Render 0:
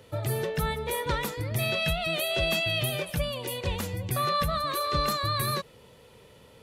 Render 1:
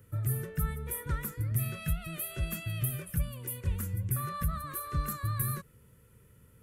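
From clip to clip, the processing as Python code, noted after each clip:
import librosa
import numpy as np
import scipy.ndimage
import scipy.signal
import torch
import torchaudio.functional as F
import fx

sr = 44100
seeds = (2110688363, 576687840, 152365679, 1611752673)

y = fx.curve_eq(x, sr, hz=(110.0, 390.0, 780.0, 1400.0, 4000.0, 8900.0, 13000.0), db=(0, -12, -24, -7, -23, -4, 1))
y = F.gain(torch.from_numpy(y), 1.0).numpy()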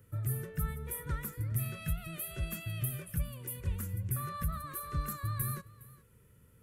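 y = x + 10.0 ** (-20.5 / 20.0) * np.pad(x, (int(412 * sr / 1000.0), 0))[:len(x)]
y = F.gain(torch.from_numpy(y), -3.0).numpy()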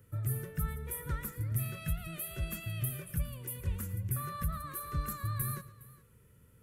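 y = x + 10.0 ** (-16.5 / 20.0) * np.pad(x, (int(112 * sr / 1000.0), 0))[:len(x)]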